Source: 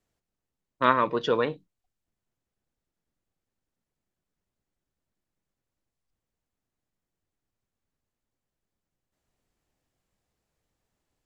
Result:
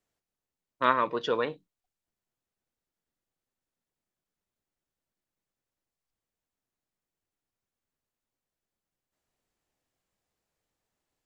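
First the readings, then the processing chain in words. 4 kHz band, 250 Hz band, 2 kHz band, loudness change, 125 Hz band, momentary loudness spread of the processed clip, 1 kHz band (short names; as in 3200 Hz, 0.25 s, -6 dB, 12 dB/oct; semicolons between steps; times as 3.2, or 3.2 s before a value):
-2.0 dB, -5.5 dB, -2.0 dB, -3.0 dB, -7.5 dB, 6 LU, -2.5 dB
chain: low shelf 240 Hz -7.5 dB; gain -2 dB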